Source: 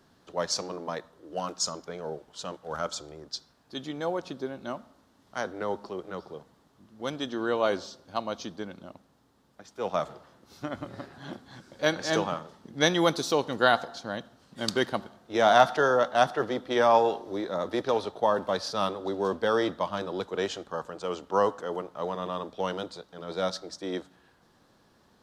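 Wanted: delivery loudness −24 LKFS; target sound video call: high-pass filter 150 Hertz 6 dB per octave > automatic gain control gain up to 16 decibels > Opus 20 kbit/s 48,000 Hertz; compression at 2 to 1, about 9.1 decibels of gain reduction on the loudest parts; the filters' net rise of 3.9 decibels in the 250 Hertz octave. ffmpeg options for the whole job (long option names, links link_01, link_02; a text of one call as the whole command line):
ffmpeg -i in.wav -af "equalizer=frequency=250:width_type=o:gain=7,acompressor=threshold=-30dB:ratio=2,highpass=frequency=150:poles=1,dynaudnorm=maxgain=16dB,volume=0.5dB" -ar 48000 -c:a libopus -b:a 20k out.opus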